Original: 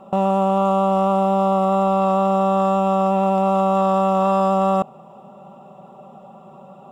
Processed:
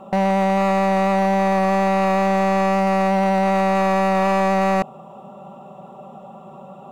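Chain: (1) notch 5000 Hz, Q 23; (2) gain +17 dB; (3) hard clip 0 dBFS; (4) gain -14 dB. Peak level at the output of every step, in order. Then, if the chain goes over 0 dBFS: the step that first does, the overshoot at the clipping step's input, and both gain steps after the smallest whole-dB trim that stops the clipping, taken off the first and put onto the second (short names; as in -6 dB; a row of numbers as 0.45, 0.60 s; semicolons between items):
-9.0, +8.0, 0.0, -14.0 dBFS; step 2, 8.0 dB; step 2 +9 dB, step 4 -6 dB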